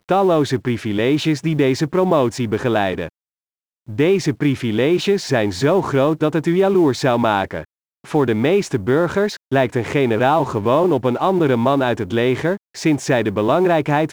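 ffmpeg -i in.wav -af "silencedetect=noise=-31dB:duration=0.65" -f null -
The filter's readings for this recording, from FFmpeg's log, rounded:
silence_start: 3.08
silence_end: 3.88 | silence_duration: 0.81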